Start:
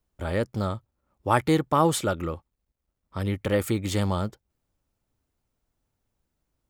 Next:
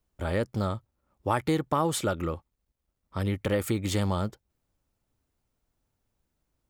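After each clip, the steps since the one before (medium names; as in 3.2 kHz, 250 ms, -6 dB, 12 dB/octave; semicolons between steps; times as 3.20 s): compression 3:1, threshold -23 dBFS, peak gain reduction 6.5 dB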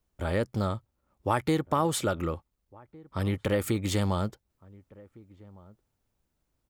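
echo from a far wall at 250 m, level -23 dB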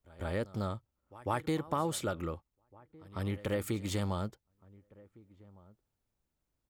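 pre-echo 149 ms -19.5 dB; trim -6.5 dB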